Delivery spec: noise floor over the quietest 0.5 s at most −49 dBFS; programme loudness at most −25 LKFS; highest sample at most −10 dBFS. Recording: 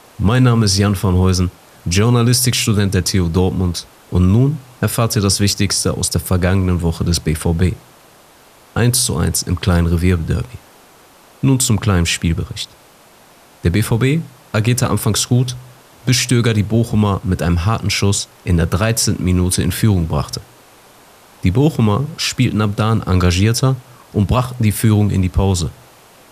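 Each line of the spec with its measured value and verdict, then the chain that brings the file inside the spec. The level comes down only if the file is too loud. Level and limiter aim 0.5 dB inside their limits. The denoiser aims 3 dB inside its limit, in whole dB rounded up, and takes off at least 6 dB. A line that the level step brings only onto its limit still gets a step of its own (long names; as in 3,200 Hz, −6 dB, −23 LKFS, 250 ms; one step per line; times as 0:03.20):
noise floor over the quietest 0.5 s −46 dBFS: out of spec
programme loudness −16.0 LKFS: out of spec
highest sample −2.5 dBFS: out of spec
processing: level −9.5 dB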